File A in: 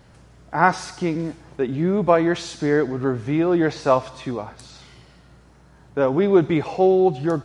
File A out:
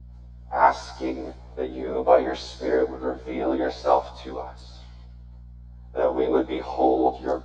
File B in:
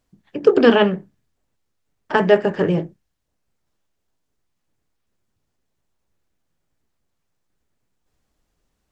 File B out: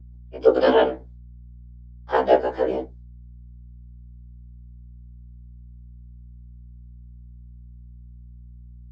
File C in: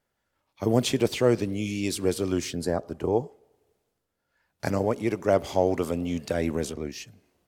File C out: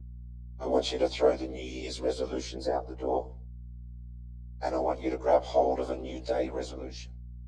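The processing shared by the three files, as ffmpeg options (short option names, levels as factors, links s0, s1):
-af "agate=range=0.0224:threshold=0.00794:ratio=3:detection=peak,afftfilt=real='hypot(re,im)*cos(2*PI*random(0))':imag='hypot(re,im)*sin(2*PI*random(1))':win_size=512:overlap=0.75,highpass=f=330:w=0.5412,highpass=f=330:w=1.3066,equalizer=f=380:t=q:w=4:g=-6,equalizer=f=760:t=q:w=4:g=3,equalizer=f=1200:t=q:w=4:g=-5,equalizer=f=1800:t=q:w=4:g=-9,equalizer=f=2700:t=q:w=4:g=-10,equalizer=f=5700:t=q:w=4:g=-6,lowpass=f=6000:w=0.5412,lowpass=f=6000:w=1.3066,aeval=exprs='val(0)+0.00282*(sin(2*PI*60*n/s)+sin(2*PI*2*60*n/s)/2+sin(2*PI*3*60*n/s)/3+sin(2*PI*4*60*n/s)/4+sin(2*PI*5*60*n/s)/5)':c=same,afftfilt=real='re*1.73*eq(mod(b,3),0)':imag='im*1.73*eq(mod(b,3),0)':win_size=2048:overlap=0.75,volume=2.51"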